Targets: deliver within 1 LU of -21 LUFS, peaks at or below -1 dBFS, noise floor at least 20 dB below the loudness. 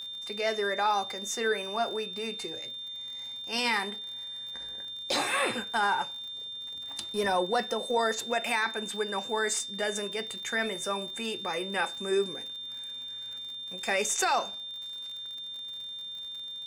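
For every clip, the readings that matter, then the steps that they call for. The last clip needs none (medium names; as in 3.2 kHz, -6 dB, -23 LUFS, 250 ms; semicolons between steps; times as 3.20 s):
tick rate 57 per s; steady tone 3.6 kHz; tone level -37 dBFS; loudness -31.0 LUFS; peak level -14.5 dBFS; loudness target -21.0 LUFS
-> de-click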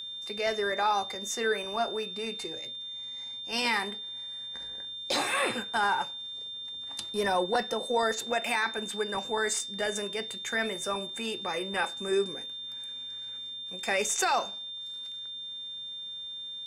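tick rate 0.42 per s; steady tone 3.6 kHz; tone level -37 dBFS
-> band-stop 3.6 kHz, Q 30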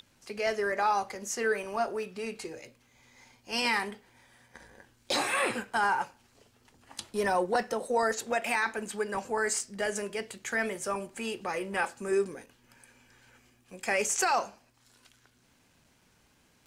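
steady tone not found; loudness -30.5 LUFS; peak level -14.0 dBFS; loudness target -21.0 LUFS
-> trim +9.5 dB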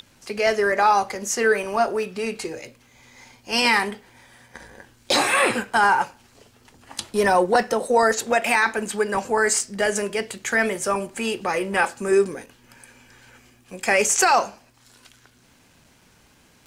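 loudness -21.0 LUFS; peak level -4.5 dBFS; noise floor -57 dBFS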